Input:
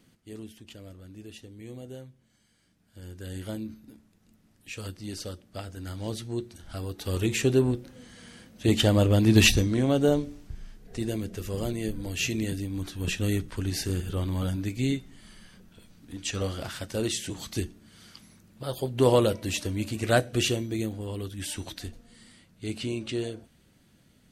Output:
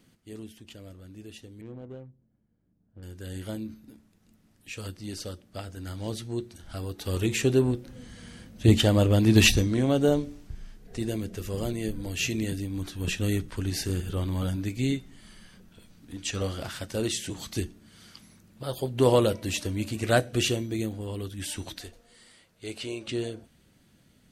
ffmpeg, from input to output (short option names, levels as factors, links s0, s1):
-filter_complex "[0:a]asettb=1/sr,asplit=3[s0][s1][s2];[s0]atrim=end=1.614[s3];[s1]atrim=start=1.61:end=3.03,asetpts=PTS-STARTPTS,afade=t=in:d=0.004:c=qsin,afade=t=out:st=1.416:d=0.004:c=qsin,adynamicsmooth=sensitivity=7.5:basefreq=530[s4];[s2]atrim=start=3.026[s5];[s3][s4]acrossfade=d=0.004:c1=hsin:c2=qsin[s6];[s6][s5]acrossfade=d=0.004:c1=qsin:c2=hsin,asettb=1/sr,asplit=3[s7][s8][s9];[s7]atrim=end=7.884[s10];[s8]atrim=start=7.88:end=8.78,asetpts=PTS-STARTPTS,afade=t=in:d=0.004:c=qsin,afade=t=out:st=0.896:d=0.004:c=qsin,lowshelf=f=140:g=12[s11];[s9]atrim=start=8.776[s12];[s10][s11]acrossfade=d=0.004:c1=hsin:c2=qsin[s13];[s13][s12]acrossfade=d=0.004:c1=qsin:c2=hsin,asettb=1/sr,asplit=3[s14][s15][s16];[s14]atrim=end=21.814[s17];[s15]atrim=start=21.81:end=23.08,asetpts=PTS-STARTPTS,afade=t=in:d=0.004:c=qsin,afade=t=out:st=1.266:d=0.004:c=qsin,lowshelf=f=330:t=q:w=1.5:g=-8[s18];[s16]atrim=start=23.076[s19];[s17][s18]acrossfade=d=0.004:c1=hsin:c2=qsin[s20];[s20][s19]acrossfade=d=0.004:c1=qsin:c2=hsin"